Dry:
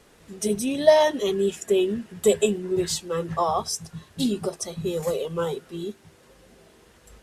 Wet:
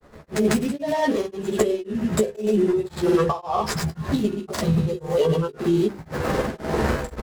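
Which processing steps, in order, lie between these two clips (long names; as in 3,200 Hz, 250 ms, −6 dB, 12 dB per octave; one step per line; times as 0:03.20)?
running median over 15 samples
camcorder AGC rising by 59 dB per second
mains-hum notches 50/100/150/200/250/300/350/400/450/500 Hz
downward compressor, threshold −22 dBFS, peak gain reduction 12 dB
granular cloud 100 ms, pitch spread up and down by 0 semitones
double-tracking delay 14 ms −4.5 dB
tremolo along a rectified sine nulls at 1.9 Hz
level +6.5 dB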